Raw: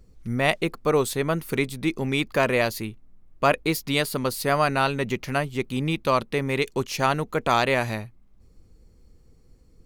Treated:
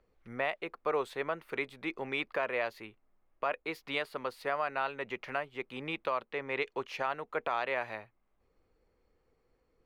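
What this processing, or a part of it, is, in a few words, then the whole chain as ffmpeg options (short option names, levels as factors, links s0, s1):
DJ mixer with the lows and highs turned down: -filter_complex "[0:a]acrossover=split=430 3100:gain=0.112 1 0.0794[s0][s1][s2];[s0][s1][s2]amix=inputs=3:normalize=0,alimiter=limit=0.133:level=0:latency=1:release=473,asettb=1/sr,asplit=3[s3][s4][s5];[s3]atrim=end=6.324[s6];[s4]atrim=start=6.32:end=6.86,asetpts=PTS-STARTPTS,afade=t=in:d=0.004:c=qsin,afade=t=out:st=0.536:d=0.004:c=qsin,lowpass=7500[s7];[s5]atrim=start=6.856[s8];[s6][s7]acrossfade=d=0.004:c1=hsin:c2=qsin[s9];[s9][s8]acrossfade=d=0.004:c1=qsin:c2=hsin,volume=0.708"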